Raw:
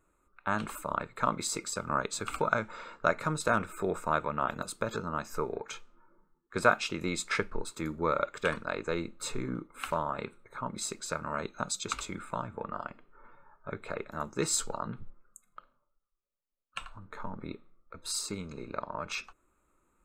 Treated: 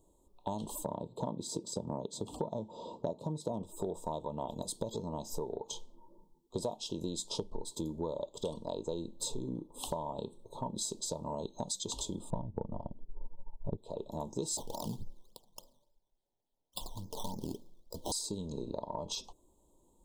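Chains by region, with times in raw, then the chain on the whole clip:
0.85–3.63 HPF 130 Hz + tilt -2.5 dB/oct
12.3–13.78 transient shaper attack +5 dB, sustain -5 dB + tilt -4.5 dB/oct + upward expander, over -45 dBFS
14.57–18.12 decimation with a swept rate 13× 3.5 Hz + hard clip -30.5 dBFS
whole clip: Chebyshev band-stop 960–3200 Hz, order 4; compressor 6:1, threshold -40 dBFS; gain +6 dB

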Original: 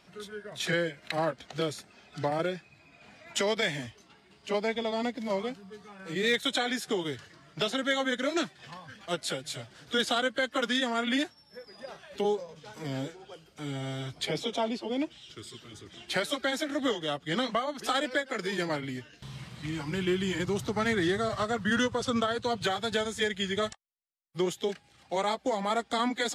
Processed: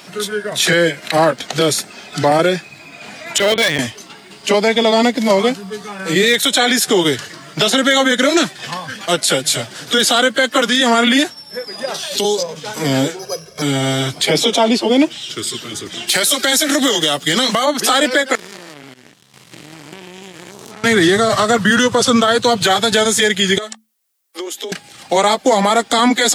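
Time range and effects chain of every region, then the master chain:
3.38–3.79 LPC vocoder at 8 kHz pitch kept + overloaded stage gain 26.5 dB
11.94–12.43 resonant high shelf 2900 Hz +10.5 dB, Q 1.5 + compressor, threshold -32 dBFS
13.19–13.62 comb 1.8 ms, depth 97% + careless resampling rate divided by 8×, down filtered, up zero stuff + tape spacing loss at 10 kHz 26 dB
16.07–17.66 high shelf 3600 Hz +11 dB + compressor 10:1, threshold -30 dBFS + hard clip -25.5 dBFS
18.35–20.84 stepped spectrum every 0.2 s + compressor 16:1, threshold -38 dBFS + power-law curve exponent 3
23.58–24.72 Chebyshev high-pass 220 Hz, order 10 + compressor 4:1, threshold -46 dBFS
whole clip: HPF 150 Hz 12 dB/oct; high shelf 6200 Hz +10.5 dB; maximiser +22.5 dB; gain -3 dB

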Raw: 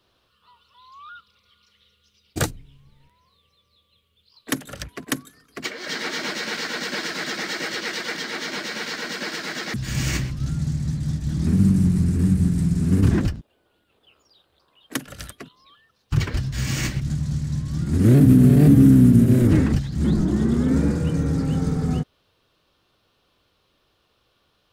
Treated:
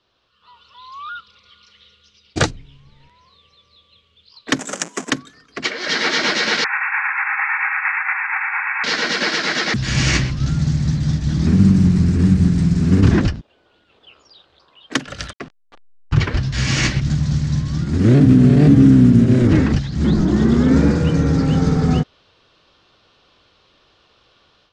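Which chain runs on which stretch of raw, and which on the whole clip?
4.59–5.1 half-waves squared off + brick-wall FIR high-pass 160 Hz + resonant high shelf 5600 Hz +10.5 dB, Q 3
6.64–8.84 CVSD 32 kbps + brick-wall FIR band-pass 760–2700 Hz + echo 78 ms -6 dB
15.33–16.43 level-crossing sampler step -43.5 dBFS + high shelf 3500 Hz -7 dB
whole clip: LPF 6200 Hz 24 dB/oct; low shelf 420 Hz -4.5 dB; AGC gain up to 11 dB

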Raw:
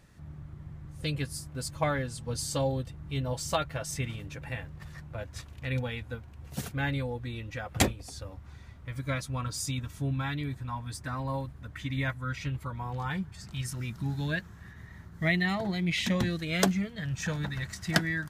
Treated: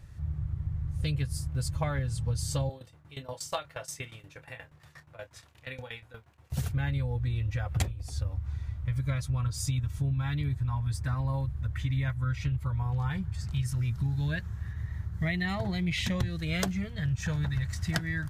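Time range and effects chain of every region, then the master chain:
2.69–6.52 HPF 360 Hz + tremolo saw down 8.4 Hz, depth 90% + doubler 27 ms -12 dB
whole clip: resonant low shelf 150 Hz +12 dB, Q 1.5; compressor, threshold -26 dBFS

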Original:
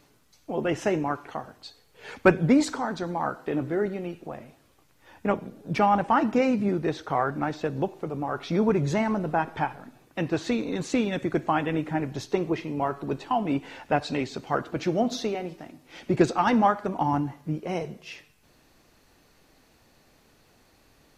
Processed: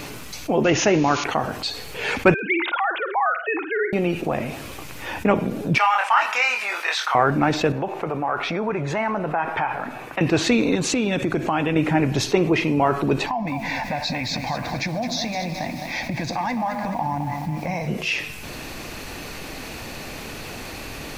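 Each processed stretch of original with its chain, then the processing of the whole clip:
0.64–1.24 switching spikes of -28 dBFS + brick-wall FIR low-pass 7000 Hz
2.34–3.93 sine-wave speech + HPF 970 Hz + flutter echo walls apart 9 m, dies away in 0.22 s
5.78–7.15 HPF 950 Hz 24 dB/oct + doubler 24 ms -4.5 dB
7.72–10.21 compressor 3:1, threshold -30 dBFS + three-band isolator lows -12 dB, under 560 Hz, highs -13 dB, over 2300 Hz
10.75–11.76 bell 2000 Hz -4 dB 0.41 oct + compressor 2.5:1, threshold -34 dBFS
13.26–17.88 compressor 5:1, threshold -36 dBFS + fixed phaser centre 2000 Hz, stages 8 + lo-fi delay 0.212 s, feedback 55%, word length 10-bit, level -9.5 dB
whole clip: bell 2500 Hz +6 dB 0.46 oct; fast leveller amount 50%; gain +1.5 dB

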